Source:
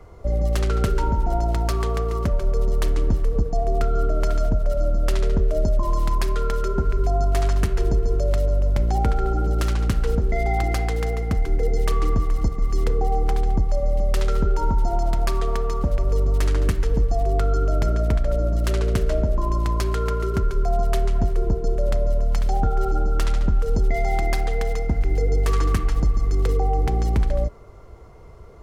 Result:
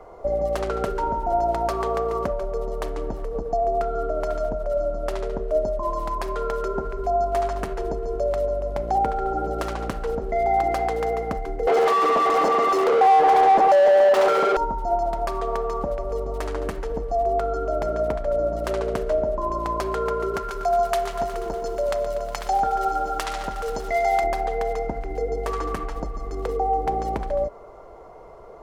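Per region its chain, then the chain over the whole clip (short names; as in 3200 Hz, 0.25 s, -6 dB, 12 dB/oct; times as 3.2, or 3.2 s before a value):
11.67–14.57 HPF 270 Hz + overdrive pedal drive 37 dB, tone 2800 Hz, clips at -12.5 dBFS
20.36–24.24 tilt shelf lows -8 dB, about 930 Hz + lo-fi delay 0.121 s, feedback 80%, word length 8-bit, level -13.5 dB
whole clip: bell 81 Hz -9.5 dB 1.6 oct; compressor, threshold -23 dBFS; bell 700 Hz +15 dB 1.9 oct; gain -4.5 dB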